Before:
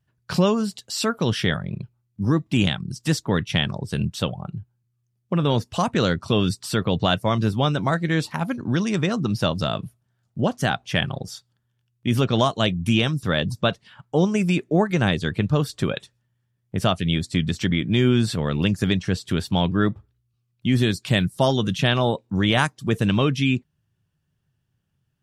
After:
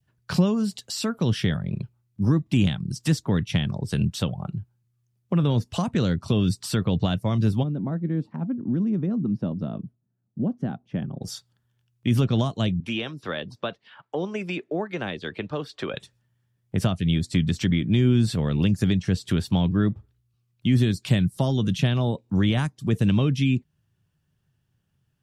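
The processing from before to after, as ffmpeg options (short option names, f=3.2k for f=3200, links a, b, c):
-filter_complex "[0:a]asplit=3[a][b][c];[a]afade=t=out:st=7.62:d=0.02[d];[b]bandpass=f=230:t=q:w=1.7,afade=t=in:st=7.62:d=0.02,afade=t=out:st=11.21:d=0.02[e];[c]afade=t=in:st=11.21:d=0.02[f];[d][e][f]amix=inputs=3:normalize=0,asettb=1/sr,asplit=3[g][h][i];[g]atrim=end=12.804[j];[h]atrim=start=12.8:end=15.94,asetpts=PTS-STARTPTS,afade=t=in:d=0.004:c=qsin,afade=t=out:st=3.136:d=0.004:c=qsin,acrossover=split=310 4500:gain=0.112 1 0.112[k][l][m];[k][l][m]amix=inputs=3:normalize=0[n];[i]atrim=start=15.936[o];[j][n]acrossfade=d=0.004:c1=hsin:c2=qsin[p];[p][o]acrossfade=d=0.004:c1=qsin:c2=hsin,adynamicequalizer=threshold=0.01:dfrequency=1300:dqfactor=1.4:tfrequency=1300:tqfactor=1.4:attack=5:release=100:ratio=0.375:range=2:mode=cutabove:tftype=bell,acrossover=split=270[q][r];[r]acompressor=threshold=-32dB:ratio=3[s];[q][s]amix=inputs=2:normalize=0,volume=1.5dB"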